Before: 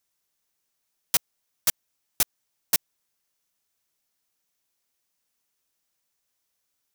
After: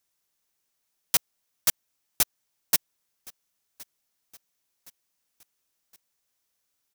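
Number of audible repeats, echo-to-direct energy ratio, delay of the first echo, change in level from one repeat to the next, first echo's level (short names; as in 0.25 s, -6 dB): 2, -22.5 dB, 1.067 s, -6.0 dB, -23.5 dB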